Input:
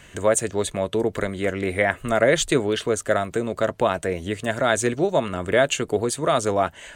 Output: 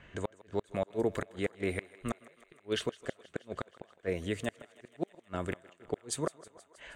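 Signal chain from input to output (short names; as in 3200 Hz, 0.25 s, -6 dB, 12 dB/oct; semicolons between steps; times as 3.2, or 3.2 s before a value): flipped gate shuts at -12 dBFS, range -40 dB; low-pass opened by the level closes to 2200 Hz, open at -25 dBFS; thinning echo 0.159 s, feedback 75%, high-pass 340 Hz, level -19.5 dB; gain -7 dB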